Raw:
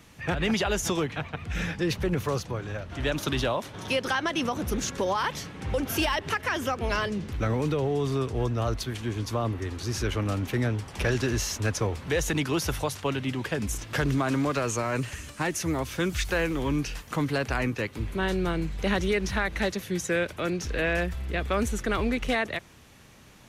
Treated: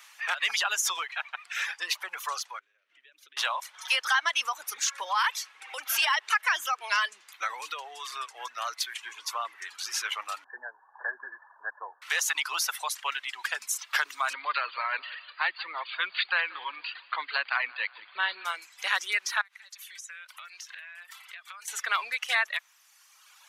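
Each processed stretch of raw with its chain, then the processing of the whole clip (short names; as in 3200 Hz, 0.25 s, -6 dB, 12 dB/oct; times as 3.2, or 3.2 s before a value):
2.59–3.37 compressor 20:1, threshold -37 dBFS + EQ curve 440 Hz 0 dB, 850 Hz -24 dB, 2200 Hz -10 dB, 3800 Hz -15 dB, 6600 Hz -18 dB
10.44–12.02 brick-wall FIR low-pass 1800 Hz + bell 1300 Hz -14.5 dB 0.38 oct
14.33–18.45 brick-wall FIR low-pass 4800 Hz + resonant low shelf 120 Hz -12 dB, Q 3 + feedback echo 0.178 s, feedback 47%, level -11.5 dB
19.41–21.68 HPF 970 Hz + compressor 12:1, threshold -43 dBFS
whole clip: reverb removal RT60 1.5 s; HPF 1000 Hz 24 dB/oct; gain +5 dB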